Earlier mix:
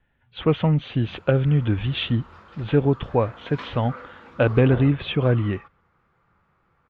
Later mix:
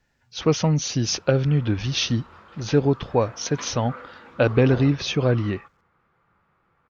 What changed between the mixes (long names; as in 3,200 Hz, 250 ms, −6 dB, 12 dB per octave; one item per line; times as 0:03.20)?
speech: remove elliptic low-pass filter 3,400 Hz, stop band 40 dB
master: add low-shelf EQ 110 Hz −6 dB